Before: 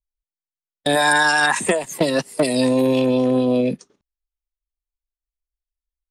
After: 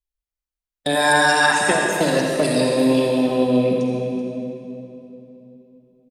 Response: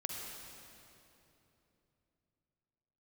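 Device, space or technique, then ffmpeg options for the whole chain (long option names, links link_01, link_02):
cave: -filter_complex "[0:a]aecho=1:1:381:0.211[link_01];[1:a]atrim=start_sample=2205[link_02];[link_01][link_02]afir=irnorm=-1:irlink=0"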